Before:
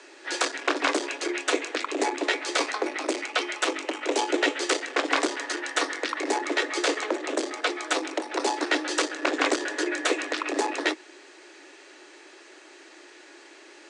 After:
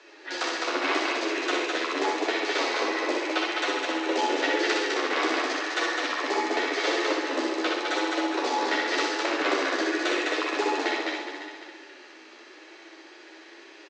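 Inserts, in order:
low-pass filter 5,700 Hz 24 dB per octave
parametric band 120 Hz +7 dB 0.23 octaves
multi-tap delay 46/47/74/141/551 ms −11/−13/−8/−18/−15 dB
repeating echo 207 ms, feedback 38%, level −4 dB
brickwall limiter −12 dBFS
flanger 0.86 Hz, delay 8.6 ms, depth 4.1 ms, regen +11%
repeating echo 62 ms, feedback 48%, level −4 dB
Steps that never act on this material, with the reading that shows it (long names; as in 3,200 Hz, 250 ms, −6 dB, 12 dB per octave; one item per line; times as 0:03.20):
parametric band 120 Hz: nothing at its input below 230 Hz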